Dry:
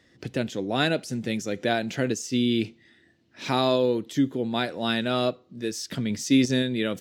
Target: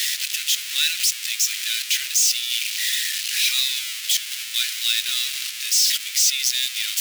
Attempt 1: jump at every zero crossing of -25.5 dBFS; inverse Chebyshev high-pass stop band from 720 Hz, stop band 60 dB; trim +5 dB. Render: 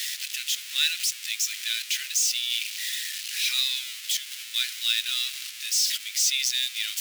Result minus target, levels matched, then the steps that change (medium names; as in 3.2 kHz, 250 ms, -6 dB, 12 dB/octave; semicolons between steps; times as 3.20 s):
jump at every zero crossing: distortion -5 dB
change: jump at every zero crossing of -17.5 dBFS